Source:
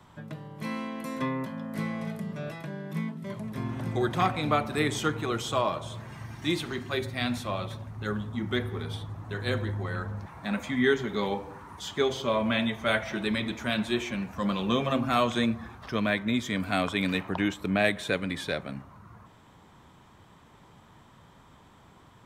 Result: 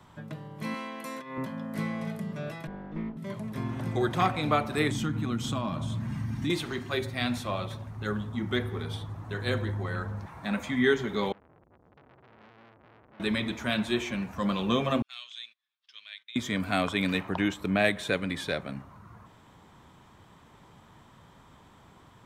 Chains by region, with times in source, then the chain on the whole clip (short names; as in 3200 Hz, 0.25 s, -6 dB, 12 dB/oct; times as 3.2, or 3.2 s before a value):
0.74–1.38 HPF 530 Hz 6 dB/oct + negative-ratio compressor -37 dBFS, ratio -0.5
2.67–3.17 minimum comb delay 4.2 ms + tape spacing loss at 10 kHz 36 dB
4.91–6.5 resonant low shelf 320 Hz +8.5 dB, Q 3 + compressor 3:1, threshold -28 dBFS
11.32–13.2 inverse Chebyshev low-pass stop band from 500 Hz, stop band 50 dB + compressor 4:1, threshold -45 dBFS + core saturation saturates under 1700 Hz
15.02–16.36 ladder band-pass 3900 Hz, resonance 45% + gate -60 dBFS, range -20 dB
whole clip: dry